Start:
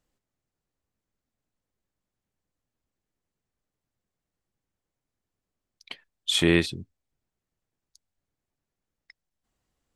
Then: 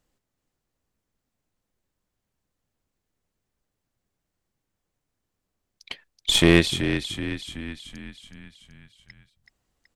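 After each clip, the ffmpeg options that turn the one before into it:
-filter_complex "[0:a]asplit=8[a][b][c][d][e][f][g][h];[b]adelay=377,afreqshift=-31,volume=-8.5dB[i];[c]adelay=754,afreqshift=-62,volume=-13.5dB[j];[d]adelay=1131,afreqshift=-93,volume=-18.6dB[k];[e]adelay=1508,afreqshift=-124,volume=-23.6dB[l];[f]adelay=1885,afreqshift=-155,volume=-28.6dB[m];[g]adelay=2262,afreqshift=-186,volume=-33.7dB[n];[h]adelay=2639,afreqshift=-217,volume=-38.7dB[o];[a][i][j][k][l][m][n][o]amix=inputs=8:normalize=0,aeval=exprs='0.501*(cos(1*acos(clip(val(0)/0.501,-1,1)))-cos(1*PI/2))+0.0398*(cos(6*acos(clip(val(0)/0.501,-1,1)))-cos(6*PI/2))':c=same,volume=4dB"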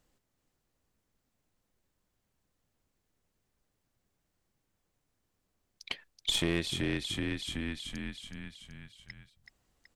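-filter_complex "[0:a]asplit=2[a][b];[b]alimiter=limit=-10.5dB:level=0:latency=1:release=100,volume=0dB[c];[a][c]amix=inputs=2:normalize=0,acompressor=threshold=-27dB:ratio=2.5,volume=-5dB"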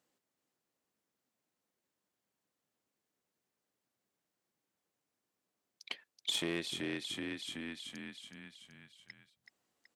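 -af "highpass=220,volume=-4.5dB"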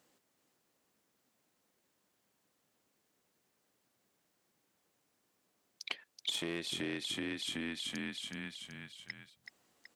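-af "acompressor=threshold=-45dB:ratio=4,volume=9dB"

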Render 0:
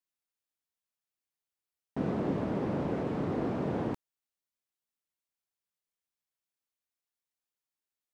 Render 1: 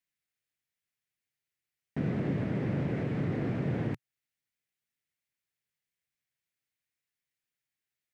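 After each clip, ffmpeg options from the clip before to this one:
-filter_complex "[0:a]equalizer=f=125:t=o:w=1:g=11,equalizer=f=1k:t=o:w=1:g=-7,equalizer=f=2k:t=o:w=1:g=10,asplit=2[a][b];[b]alimiter=level_in=2.5dB:limit=-24dB:level=0:latency=1:release=211,volume=-2.5dB,volume=0.5dB[c];[a][c]amix=inputs=2:normalize=0,volume=-6.5dB"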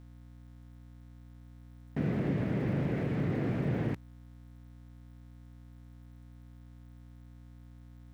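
-af "aeval=exprs='val(0)+0.00316*(sin(2*PI*60*n/s)+sin(2*PI*2*60*n/s)/2+sin(2*PI*3*60*n/s)/3+sin(2*PI*4*60*n/s)/4+sin(2*PI*5*60*n/s)/5)':c=same,aeval=exprs='val(0)*gte(abs(val(0)),0.00158)':c=same"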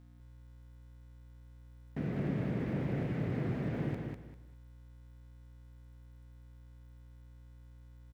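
-af "aecho=1:1:198|396|594:0.631|0.158|0.0394,volume=-5dB"

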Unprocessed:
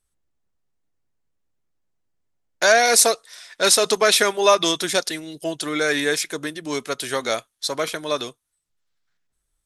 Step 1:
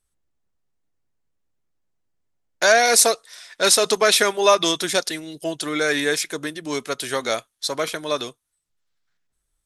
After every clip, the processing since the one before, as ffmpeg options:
-af anull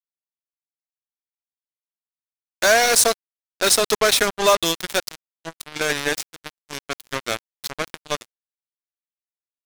-af "acrusher=bits=2:mix=0:aa=0.5,volume=-1dB"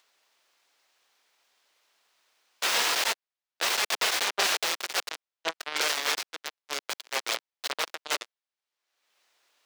-filter_complex "[0:a]aeval=exprs='(mod(6.68*val(0)+1,2)-1)/6.68':c=same,acompressor=mode=upward:threshold=-47dB:ratio=2.5,acrossover=split=380 6000:gain=0.0631 1 0.178[a][b][c];[a][b][c]amix=inputs=3:normalize=0,volume=5.5dB"

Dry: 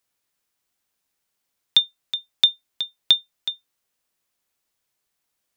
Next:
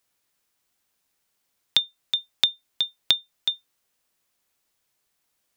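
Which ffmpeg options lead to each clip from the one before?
-af "acompressor=threshold=-20dB:ratio=6,volume=3dB"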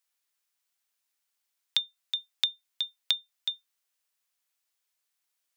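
-af "highpass=f=1.3k:p=1,volume=-6dB"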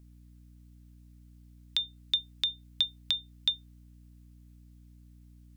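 -af "alimiter=limit=-16dB:level=0:latency=1:release=50,aeval=exprs='val(0)+0.00141*(sin(2*PI*60*n/s)+sin(2*PI*2*60*n/s)/2+sin(2*PI*3*60*n/s)/3+sin(2*PI*4*60*n/s)/4+sin(2*PI*5*60*n/s)/5)':c=same,volume=4dB"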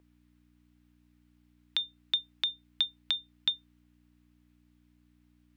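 -filter_complex "[0:a]acrossover=split=330 3300:gain=0.126 1 0.2[a][b][c];[a][b][c]amix=inputs=3:normalize=0,volume=4.5dB"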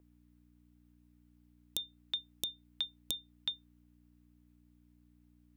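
-af "aeval=exprs='(mod(4.47*val(0)+1,2)-1)/4.47':c=same,tiltshelf=f=1.2k:g=9,crystalizer=i=4:c=0,volume=-8.5dB"

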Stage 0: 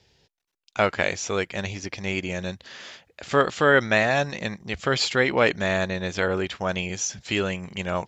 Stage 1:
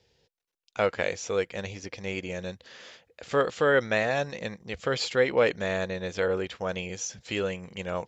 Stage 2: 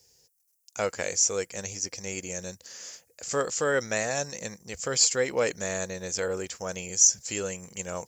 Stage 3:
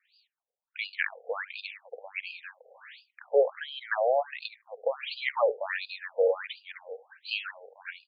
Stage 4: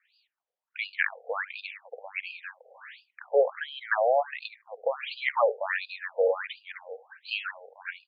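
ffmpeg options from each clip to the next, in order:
-af "equalizer=f=490:t=o:w=0.29:g=9.5,volume=-6.5dB"
-af "aexciter=amount=14.6:drive=5.4:freq=5.4k,volume=-3.5dB"
-af "aecho=1:1:72:0.0944,afftfilt=real='re*between(b*sr/1024,570*pow(3500/570,0.5+0.5*sin(2*PI*1.4*pts/sr))/1.41,570*pow(3500/570,0.5+0.5*sin(2*PI*1.4*pts/sr))*1.41)':imag='im*between(b*sr/1024,570*pow(3500/570,0.5+0.5*sin(2*PI*1.4*pts/sr))/1.41,570*pow(3500/570,0.5+0.5*sin(2*PI*1.4*pts/sr))*1.41)':win_size=1024:overlap=0.75,volume=8dB"
-af "bandpass=f=1.2k:t=q:w=0.66:csg=0,volume=4.5dB"

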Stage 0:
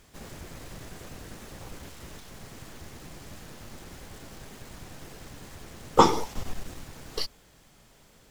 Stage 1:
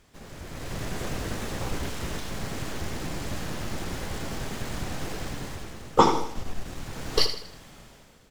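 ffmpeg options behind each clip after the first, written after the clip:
-af "highshelf=f=7.7k:g=-6.5,dynaudnorm=f=260:g=5:m=13.5dB,aecho=1:1:80|160|240|320:0.316|0.126|0.0506|0.0202,volume=-2dB"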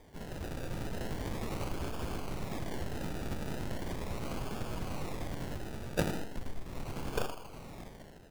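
-af "acompressor=threshold=-39dB:ratio=2.5,acrusher=samples=32:mix=1:aa=0.000001:lfo=1:lforange=19.2:lforate=0.38,volume=2.5dB"

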